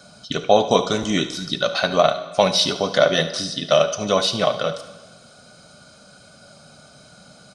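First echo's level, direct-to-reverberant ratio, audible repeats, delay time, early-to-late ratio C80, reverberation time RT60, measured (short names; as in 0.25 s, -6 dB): -14.5 dB, 9.0 dB, 1, 72 ms, 14.0 dB, 1.3 s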